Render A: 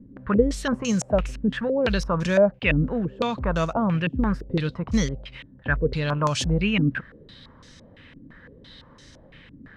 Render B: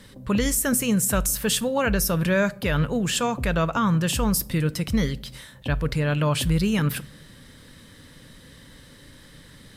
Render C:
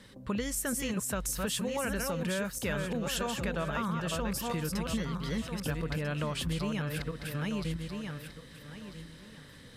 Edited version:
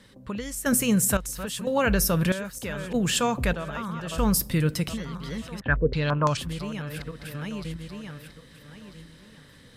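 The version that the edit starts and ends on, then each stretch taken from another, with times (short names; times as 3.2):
C
0.66–1.17 from B
1.67–2.32 from B
2.94–3.53 from B
4.18–4.89 from B
5.61–6.37 from A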